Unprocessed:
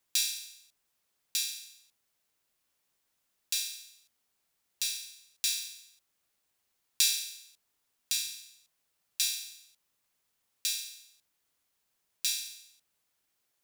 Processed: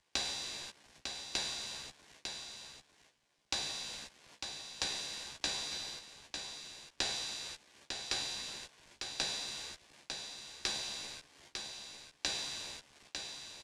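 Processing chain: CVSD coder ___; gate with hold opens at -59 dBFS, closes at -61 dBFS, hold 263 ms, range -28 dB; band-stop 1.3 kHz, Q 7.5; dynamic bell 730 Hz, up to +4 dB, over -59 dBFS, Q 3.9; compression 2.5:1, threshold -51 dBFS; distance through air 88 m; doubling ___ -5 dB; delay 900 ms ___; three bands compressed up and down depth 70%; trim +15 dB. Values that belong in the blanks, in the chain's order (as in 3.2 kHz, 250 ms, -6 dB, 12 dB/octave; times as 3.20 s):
64 kbps, 14 ms, -14.5 dB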